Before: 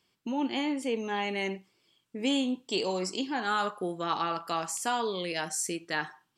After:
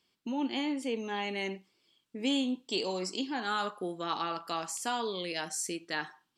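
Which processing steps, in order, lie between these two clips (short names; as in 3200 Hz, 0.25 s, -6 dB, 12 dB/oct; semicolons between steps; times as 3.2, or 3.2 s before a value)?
graphic EQ 125/250/4000 Hz -4/+3/+4 dB; gain -4 dB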